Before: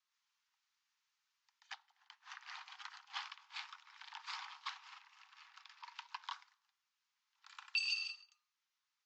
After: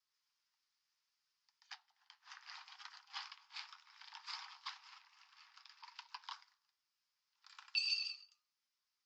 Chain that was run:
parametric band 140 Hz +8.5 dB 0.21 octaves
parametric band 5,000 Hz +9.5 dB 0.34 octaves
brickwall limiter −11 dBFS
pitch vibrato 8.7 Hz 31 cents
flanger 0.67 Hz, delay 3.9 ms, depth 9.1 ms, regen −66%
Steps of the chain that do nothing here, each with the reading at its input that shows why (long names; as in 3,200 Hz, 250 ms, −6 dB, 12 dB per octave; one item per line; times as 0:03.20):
parametric band 140 Hz: nothing at its input below 680 Hz
brickwall limiter −11 dBFS: peak of its input −20.5 dBFS